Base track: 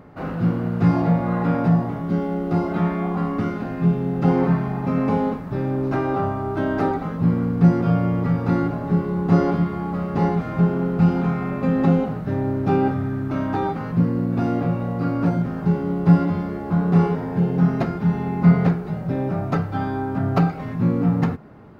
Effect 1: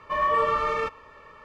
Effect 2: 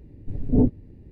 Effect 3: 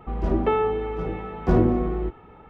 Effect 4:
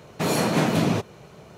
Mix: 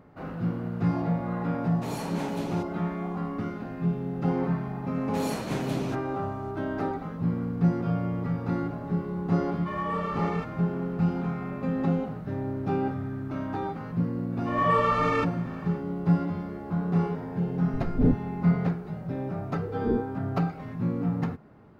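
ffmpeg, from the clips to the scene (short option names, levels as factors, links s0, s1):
-filter_complex "[4:a]asplit=2[s0][s1];[1:a]asplit=2[s2][s3];[2:a]asplit=2[s4][s5];[0:a]volume=0.376[s6];[s0]equalizer=f=880:w=6.6:g=8.5[s7];[s3]dynaudnorm=f=150:g=3:m=5.01[s8];[s5]afreqshift=-490[s9];[s7]atrim=end=1.57,asetpts=PTS-STARTPTS,volume=0.2,afade=t=in:d=0.004:c=hsin,afade=t=out:st=1.566:d=0.004:c=hsin,adelay=1620[s10];[s1]atrim=end=1.57,asetpts=PTS-STARTPTS,volume=0.282,afade=t=in:d=0.004:c=hsin,afade=t=out:st=1.566:d=0.004:c=hsin,adelay=4940[s11];[s2]atrim=end=1.44,asetpts=PTS-STARTPTS,volume=0.355,afade=t=in:d=0.004:c=hsin,afade=t=out:st=1.436:d=0.004:c=hsin,adelay=9560[s12];[s8]atrim=end=1.44,asetpts=PTS-STARTPTS,volume=0.282,afade=t=in:d=0.004:c=hsin,afade=t=out:st=1.436:d=0.004:c=hsin,adelay=14360[s13];[s4]atrim=end=1.11,asetpts=PTS-STARTPTS,volume=0.631,afade=t=in:d=0.004:c=hsin,afade=t=out:st=1.106:d=0.004:c=hsin,adelay=17460[s14];[s9]atrim=end=1.11,asetpts=PTS-STARTPTS,volume=0.376,afade=t=in:d=0.004:c=hsin,afade=t=out:st=1.106:d=0.004:c=hsin,adelay=19320[s15];[s6][s10][s11][s12][s13][s14][s15]amix=inputs=7:normalize=0"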